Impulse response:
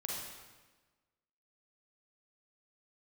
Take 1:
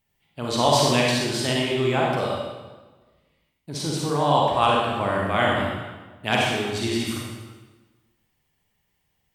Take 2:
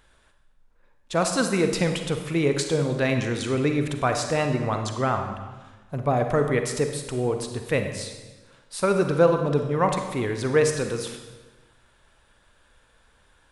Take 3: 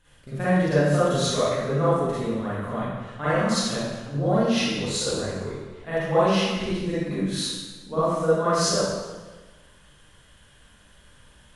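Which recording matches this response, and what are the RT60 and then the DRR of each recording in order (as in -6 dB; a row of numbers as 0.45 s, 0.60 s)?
1; 1.3 s, 1.3 s, 1.3 s; -3.0 dB, 5.5 dB, -12.5 dB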